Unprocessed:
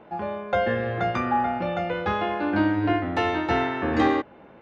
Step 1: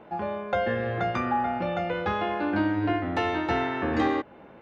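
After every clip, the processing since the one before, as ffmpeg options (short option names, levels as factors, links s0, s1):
-af "acompressor=threshold=0.0447:ratio=1.5"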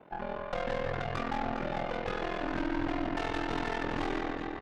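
-af "aecho=1:1:170|408|741.2|1208|1861:0.631|0.398|0.251|0.158|0.1,aeval=exprs='(tanh(22.4*val(0)+0.7)-tanh(0.7))/22.4':c=same,aeval=exprs='val(0)*sin(2*PI*21*n/s)':c=same"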